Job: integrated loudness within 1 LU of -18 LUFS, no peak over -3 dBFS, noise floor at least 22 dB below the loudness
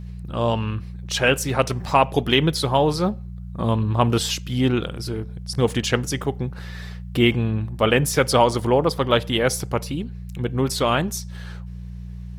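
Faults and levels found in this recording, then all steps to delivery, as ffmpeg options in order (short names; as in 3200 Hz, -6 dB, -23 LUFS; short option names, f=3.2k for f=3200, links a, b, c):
hum 60 Hz; harmonics up to 180 Hz; hum level -31 dBFS; loudness -22.0 LUFS; peak -2.5 dBFS; loudness target -18.0 LUFS
-> -af "bandreject=f=60:t=h:w=4,bandreject=f=120:t=h:w=4,bandreject=f=180:t=h:w=4"
-af "volume=4dB,alimiter=limit=-3dB:level=0:latency=1"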